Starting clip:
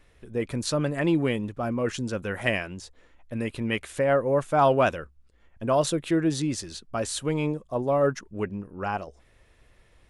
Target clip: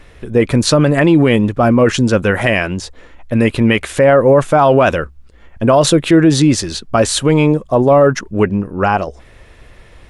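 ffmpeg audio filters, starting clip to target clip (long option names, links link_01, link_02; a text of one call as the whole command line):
ffmpeg -i in.wav -af "highshelf=frequency=6500:gain=-6.5,alimiter=level_in=18.5dB:limit=-1dB:release=50:level=0:latency=1,volume=-1dB" out.wav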